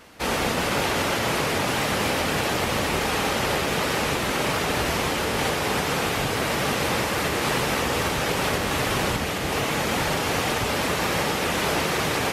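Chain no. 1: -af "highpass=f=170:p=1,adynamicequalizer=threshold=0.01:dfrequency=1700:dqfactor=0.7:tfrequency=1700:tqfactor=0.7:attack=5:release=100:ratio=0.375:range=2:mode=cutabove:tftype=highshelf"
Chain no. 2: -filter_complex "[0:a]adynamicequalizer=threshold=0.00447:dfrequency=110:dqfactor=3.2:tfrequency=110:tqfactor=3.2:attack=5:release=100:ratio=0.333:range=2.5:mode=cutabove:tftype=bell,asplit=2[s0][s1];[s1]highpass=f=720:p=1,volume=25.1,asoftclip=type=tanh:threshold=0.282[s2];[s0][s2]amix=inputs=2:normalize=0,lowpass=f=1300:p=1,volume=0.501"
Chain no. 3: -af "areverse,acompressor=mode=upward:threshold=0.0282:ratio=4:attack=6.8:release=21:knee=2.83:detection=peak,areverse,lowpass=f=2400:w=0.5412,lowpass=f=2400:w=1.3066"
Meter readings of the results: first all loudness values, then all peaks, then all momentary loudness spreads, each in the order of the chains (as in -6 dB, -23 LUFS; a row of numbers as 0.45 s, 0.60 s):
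-25.5 LUFS, -20.0 LUFS, -25.0 LUFS; -12.5 dBFS, -12.0 dBFS, -12.0 dBFS; 1 LU, 0 LU, 1 LU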